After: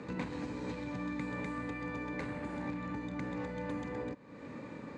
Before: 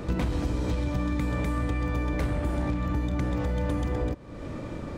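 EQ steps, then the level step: cabinet simulation 290–7300 Hz, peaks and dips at 350 Hz -10 dB, 660 Hz -10 dB, 1.3 kHz -8 dB, 3.2 kHz -9 dB, 5.5 kHz -8 dB; peaking EQ 590 Hz -4.5 dB 1.7 oct; treble shelf 2.9 kHz -8.5 dB; +1.0 dB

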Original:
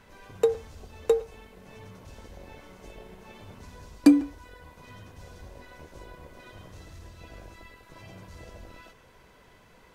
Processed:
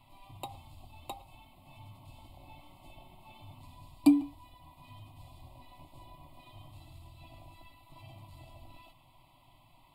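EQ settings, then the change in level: static phaser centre 300 Hz, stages 8; static phaser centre 1.7 kHz, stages 6; 0.0 dB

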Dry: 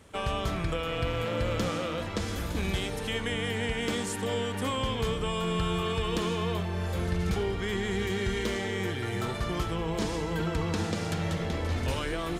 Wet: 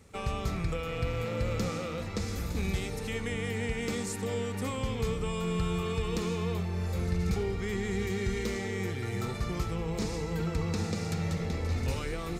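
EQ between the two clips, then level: graphic EQ with 31 bands 315 Hz -7 dB, 630 Hz -9 dB, 1 kHz -8 dB, 1.6 kHz -9 dB, 3.15 kHz -11 dB, 10 kHz -5 dB; 0.0 dB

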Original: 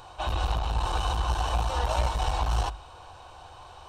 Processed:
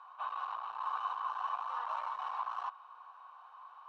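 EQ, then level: ladder band-pass 1.2 kHz, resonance 75%; 0.0 dB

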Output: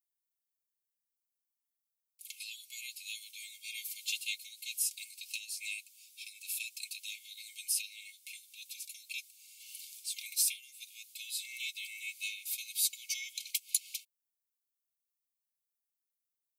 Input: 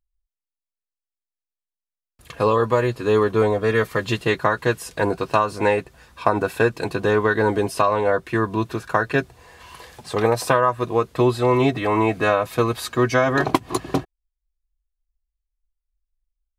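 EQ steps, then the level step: brick-wall FIR high-pass 2.1 kHz; differentiator; tilt EQ +1.5 dB/octave; -2.0 dB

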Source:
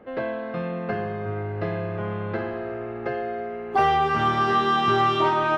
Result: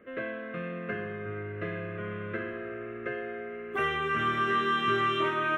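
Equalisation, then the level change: bass shelf 240 Hz -11 dB; static phaser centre 2 kHz, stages 4; 0.0 dB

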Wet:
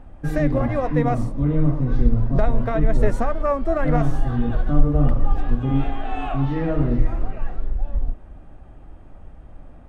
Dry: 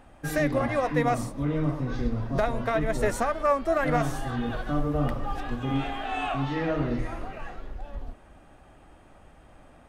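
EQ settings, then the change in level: tilt EQ -3 dB/octave; 0.0 dB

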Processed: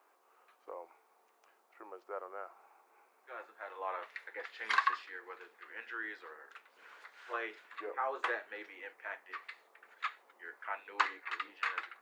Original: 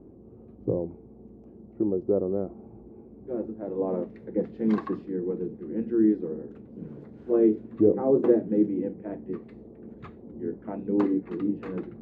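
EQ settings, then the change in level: high-pass 1.3 kHz 24 dB/octave; +15.0 dB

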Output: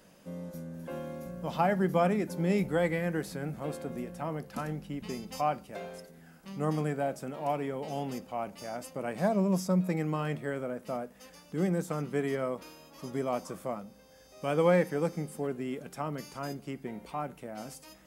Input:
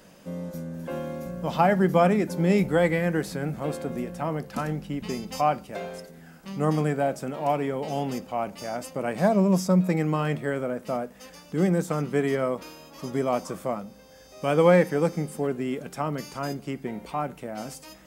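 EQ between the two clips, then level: peaking EQ 11 kHz +4.5 dB 0.24 oct; -6.5 dB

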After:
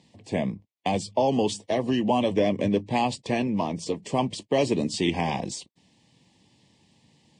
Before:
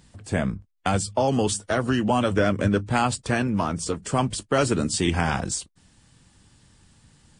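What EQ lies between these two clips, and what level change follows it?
band-pass 170–4900 Hz; Butterworth band-stop 1.4 kHz, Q 1.5; 0.0 dB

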